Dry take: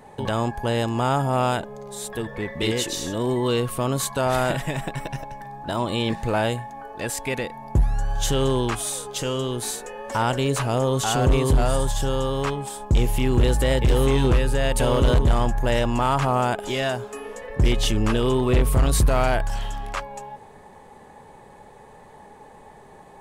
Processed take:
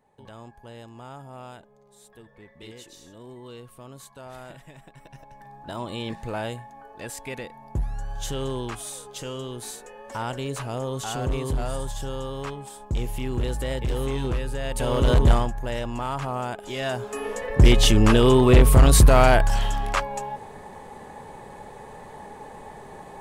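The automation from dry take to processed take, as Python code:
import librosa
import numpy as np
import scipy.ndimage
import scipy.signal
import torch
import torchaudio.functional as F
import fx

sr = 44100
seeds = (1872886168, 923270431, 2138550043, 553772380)

y = fx.gain(x, sr, db=fx.line((4.92, -20.0), (5.48, -8.0), (14.64, -8.0), (15.31, 2.5), (15.53, -8.0), (16.65, -8.0), (17.25, 5.0)))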